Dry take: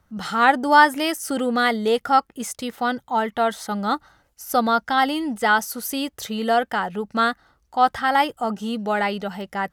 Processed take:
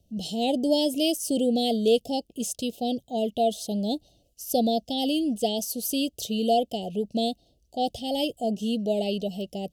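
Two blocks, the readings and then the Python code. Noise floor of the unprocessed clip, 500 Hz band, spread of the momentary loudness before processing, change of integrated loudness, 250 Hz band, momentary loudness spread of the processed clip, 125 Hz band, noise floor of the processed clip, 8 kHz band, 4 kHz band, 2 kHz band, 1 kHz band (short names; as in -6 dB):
-67 dBFS, -1.0 dB, 10 LU, -5.0 dB, 0.0 dB, 7 LU, n/a, -68 dBFS, -0.5 dB, -0.5 dB, -23.5 dB, -12.5 dB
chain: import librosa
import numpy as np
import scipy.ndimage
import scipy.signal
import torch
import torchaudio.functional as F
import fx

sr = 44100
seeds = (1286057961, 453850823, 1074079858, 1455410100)

y = scipy.signal.sosfilt(scipy.signal.cheby1(4, 1.0, [680.0, 2800.0], 'bandstop', fs=sr, output='sos'), x)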